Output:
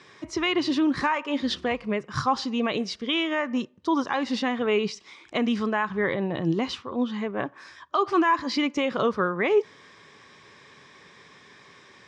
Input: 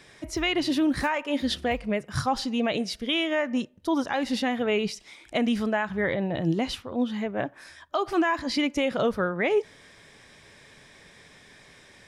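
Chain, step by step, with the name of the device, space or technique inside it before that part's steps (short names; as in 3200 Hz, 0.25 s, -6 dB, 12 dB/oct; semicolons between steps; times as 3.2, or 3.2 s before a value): car door speaker (speaker cabinet 110–6800 Hz, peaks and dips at 390 Hz +4 dB, 650 Hz -5 dB, 1100 Hz +10 dB)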